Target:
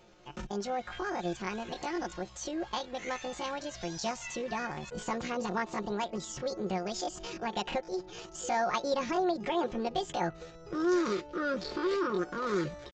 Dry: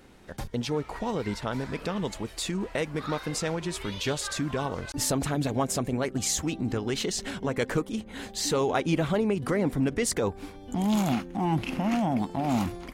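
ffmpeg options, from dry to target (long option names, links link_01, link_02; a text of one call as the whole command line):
ffmpeg -i in.wav -af "asetrate=74167,aresample=44100,atempo=0.594604,aresample=16000,aresample=44100,aecho=1:1:5.6:0.56,volume=-6dB" out.wav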